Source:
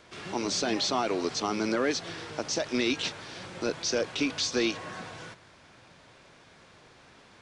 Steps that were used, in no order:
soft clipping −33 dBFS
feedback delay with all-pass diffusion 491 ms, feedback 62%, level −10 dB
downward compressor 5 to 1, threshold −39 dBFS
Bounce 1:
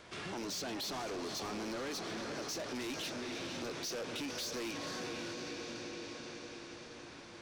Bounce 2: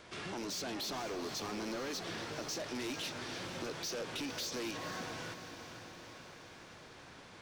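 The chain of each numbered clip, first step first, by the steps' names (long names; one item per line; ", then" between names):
feedback delay with all-pass diffusion, then soft clipping, then downward compressor
soft clipping, then downward compressor, then feedback delay with all-pass diffusion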